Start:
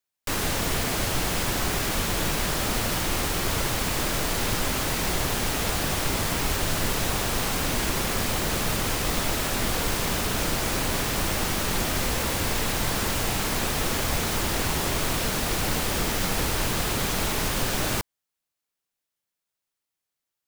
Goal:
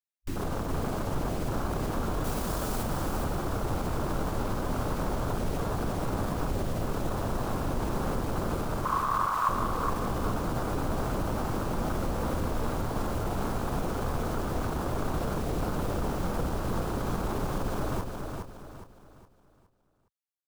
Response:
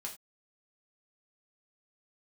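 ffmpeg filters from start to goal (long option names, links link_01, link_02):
-filter_complex "[0:a]afwtdn=0.0501,asettb=1/sr,asplit=3[link_01][link_02][link_03];[link_01]atrim=end=2.244[link_04];[link_02]atrim=start=2.24:end=2.83,asetpts=PTS-STARTPTS,afade=type=in:duration=0.004:curve=qsin,afade=type=out:start_time=0.586:duration=0.004:curve=qsin,highshelf=frequency=3600:gain=12[link_05];[link_03]atrim=start=2.826[link_06];[link_04][link_05]acrossfade=duration=0.004:curve1=hsin:curve2=qsin[link_07];[link_07][link_06]acrossfade=duration=0.004:curve1=qsin:curve2=hsin,alimiter=limit=-23dB:level=0:latency=1:release=35,asettb=1/sr,asplit=3[link_08][link_09][link_10];[link_08]atrim=end=8.854[link_11];[link_09]atrim=start=8.85:end=9.49,asetpts=PTS-STARTPTS,afade=type=in:duration=0.004:curve=qsin,afade=type=out:start_time=0.636:duration=0.004:curve=qsin,highpass=frequency=1100:width_type=q:width=9.6[link_12];[link_10]atrim=start=9.486[link_13];[link_11][link_12]acrossfade=duration=0.004:curve1=hsin:curve2=qsin[link_14];[link_14][link_13]acrossfade=duration=0.004:curve1=qsin:curve2=hsin,aecho=1:1:414|828|1242|1656|2070:0.562|0.208|0.077|0.0285|0.0105"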